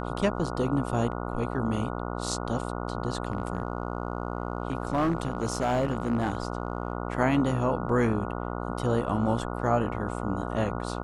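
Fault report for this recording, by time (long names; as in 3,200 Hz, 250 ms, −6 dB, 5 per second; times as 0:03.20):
mains buzz 60 Hz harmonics 24 −33 dBFS
0:03.28–0:06.93: clipping −20.5 dBFS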